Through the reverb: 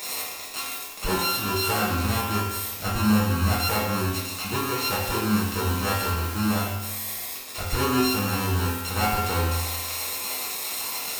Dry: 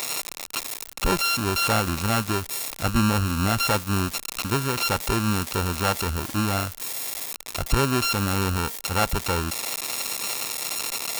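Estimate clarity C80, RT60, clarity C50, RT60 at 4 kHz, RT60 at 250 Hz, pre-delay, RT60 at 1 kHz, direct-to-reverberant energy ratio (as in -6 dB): 3.0 dB, 1.1 s, 0.5 dB, 1.0 s, 1.2 s, 4 ms, 1.1 s, -8.5 dB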